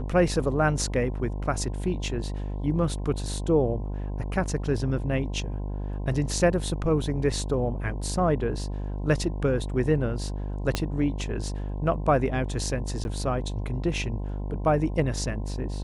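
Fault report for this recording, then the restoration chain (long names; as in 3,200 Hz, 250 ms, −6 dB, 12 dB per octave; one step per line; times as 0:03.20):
mains buzz 50 Hz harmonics 21 −31 dBFS
0:10.75: click −10 dBFS
0:13.04–0:13.05: drop-out 11 ms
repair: click removal
hum removal 50 Hz, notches 21
repair the gap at 0:13.04, 11 ms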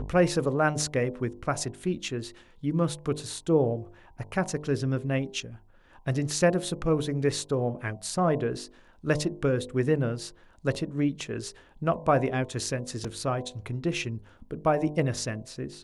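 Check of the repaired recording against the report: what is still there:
0:10.75: click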